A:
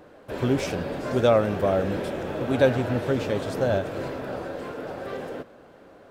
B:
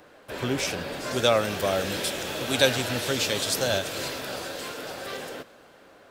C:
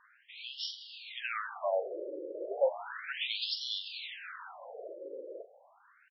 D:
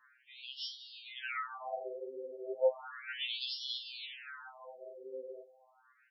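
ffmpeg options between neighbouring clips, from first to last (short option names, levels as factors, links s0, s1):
-filter_complex "[0:a]tiltshelf=f=1100:g=-6,acrossover=split=310|3300[s0][s1][s2];[s2]dynaudnorm=f=250:g=11:m=4.47[s3];[s0][s1][s3]amix=inputs=3:normalize=0"
-filter_complex "[0:a]asplit=2[s0][s1];[s1]adelay=42,volume=0.282[s2];[s0][s2]amix=inputs=2:normalize=0,afftfilt=real='re*between(b*sr/1024,410*pow(4100/410,0.5+0.5*sin(2*PI*0.34*pts/sr))/1.41,410*pow(4100/410,0.5+0.5*sin(2*PI*0.34*pts/sr))*1.41)':imag='im*between(b*sr/1024,410*pow(4100/410,0.5+0.5*sin(2*PI*0.34*pts/sr))/1.41,410*pow(4100/410,0.5+0.5*sin(2*PI*0.34*pts/sr))*1.41)':win_size=1024:overlap=0.75,volume=0.596"
-af "afftfilt=real='re*2.45*eq(mod(b,6),0)':imag='im*2.45*eq(mod(b,6),0)':win_size=2048:overlap=0.75,volume=0.891"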